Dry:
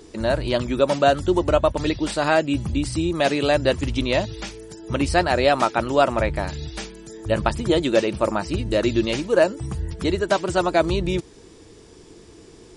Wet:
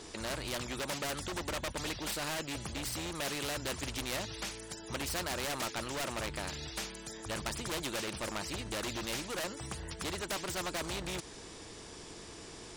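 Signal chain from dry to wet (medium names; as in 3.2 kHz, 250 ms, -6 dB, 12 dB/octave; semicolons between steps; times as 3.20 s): self-modulated delay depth 0.14 ms; hard clipper -19.5 dBFS, distortion -8 dB; spectrum-flattening compressor 2:1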